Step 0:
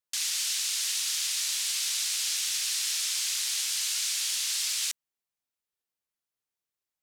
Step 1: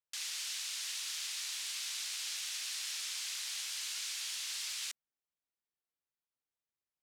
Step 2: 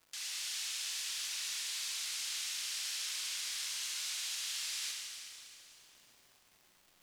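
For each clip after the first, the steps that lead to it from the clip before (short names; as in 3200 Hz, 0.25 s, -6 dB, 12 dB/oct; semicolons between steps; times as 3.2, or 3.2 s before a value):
high shelf 4200 Hz -8.5 dB; gain -5 dB
crackle 340/s -50 dBFS; Schroeder reverb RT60 2.7 s, combs from 31 ms, DRR -0.5 dB; gain -2.5 dB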